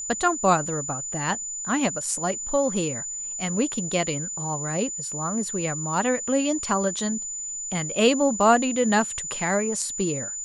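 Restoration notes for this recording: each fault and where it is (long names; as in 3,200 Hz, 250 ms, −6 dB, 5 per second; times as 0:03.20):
whistle 7,000 Hz −30 dBFS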